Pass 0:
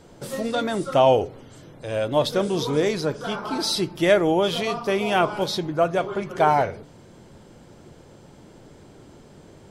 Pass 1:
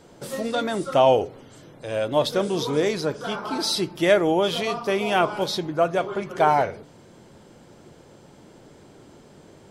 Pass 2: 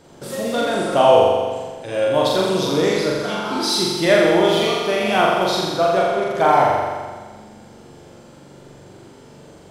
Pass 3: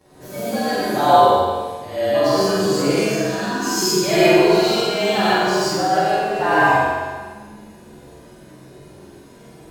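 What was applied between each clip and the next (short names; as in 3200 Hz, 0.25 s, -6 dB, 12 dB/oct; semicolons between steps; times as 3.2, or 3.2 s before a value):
low shelf 100 Hz -8.5 dB
flutter echo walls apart 7.3 m, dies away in 1.5 s; gain +1 dB
inharmonic rescaling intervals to 109%; non-linear reverb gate 0.17 s rising, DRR -6 dB; gain -3.5 dB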